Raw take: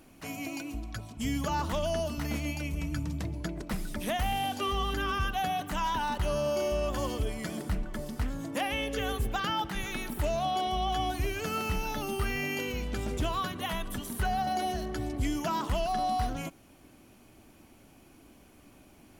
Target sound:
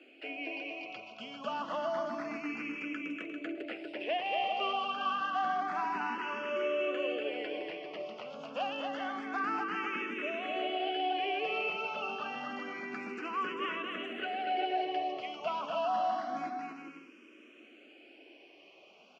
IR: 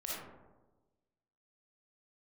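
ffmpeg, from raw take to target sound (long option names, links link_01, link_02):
-filter_complex "[0:a]equalizer=frequency=2800:width=2.1:gain=3,acrossover=split=600|2500[link_01][link_02][link_03];[link_01]alimiter=level_in=6dB:limit=-24dB:level=0:latency=1,volume=-6dB[link_04];[link_03]acompressor=threshold=-55dB:ratio=6[link_05];[link_04][link_02][link_05]amix=inputs=3:normalize=0,asoftclip=type=hard:threshold=-26.5dB,highpass=frequency=290:width=0.5412,highpass=frequency=290:width=1.3066,equalizer=frequency=900:width_type=q:width=4:gain=-8,equalizer=frequency=1800:width_type=q:width=4:gain=-4,equalizer=frequency=2700:width_type=q:width=4:gain=7,equalizer=frequency=3800:width_type=q:width=4:gain=-9,lowpass=frequency=4900:width=0.5412,lowpass=frequency=4900:width=1.3066,aecho=1:1:240|396|497.4|563.3|606.2:0.631|0.398|0.251|0.158|0.1,asplit=2[link_06][link_07];[link_07]afreqshift=0.28[link_08];[link_06][link_08]amix=inputs=2:normalize=1,volume=2.5dB"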